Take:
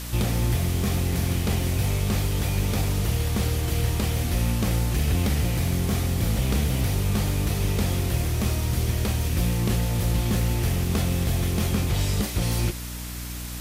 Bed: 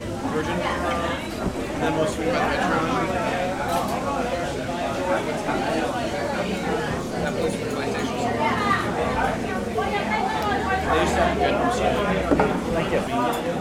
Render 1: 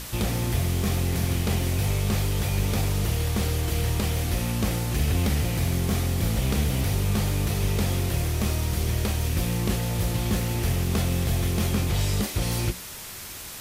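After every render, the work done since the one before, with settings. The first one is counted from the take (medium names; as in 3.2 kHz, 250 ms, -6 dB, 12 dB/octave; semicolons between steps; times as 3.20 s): hum notches 60/120/180/240/300 Hz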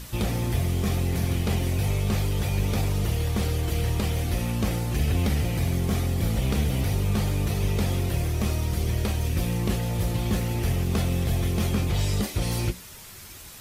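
noise reduction 7 dB, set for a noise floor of -39 dBFS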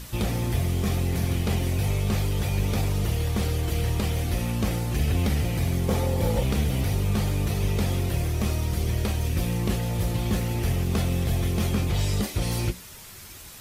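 5.88–6.43 s: small resonant body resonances 520/870 Hz, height 13 dB, ringing for 35 ms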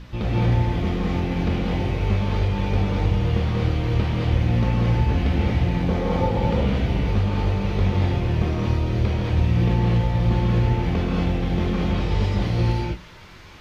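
distance through air 250 m; gated-style reverb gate 260 ms rising, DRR -4.5 dB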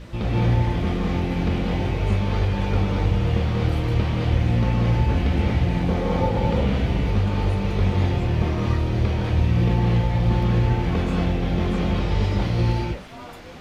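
add bed -17.5 dB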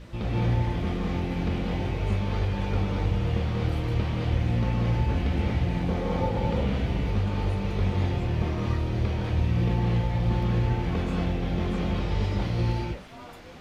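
trim -5 dB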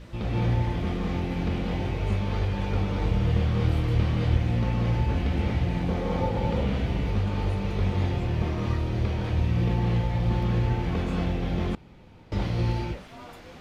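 2.99–4.37 s: doubling 25 ms -5.5 dB; 11.75–12.32 s: room tone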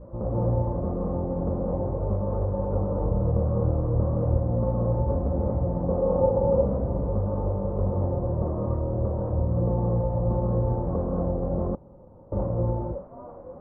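Chebyshev low-pass 1.1 kHz, order 4; peaking EQ 550 Hz +14.5 dB 0.25 oct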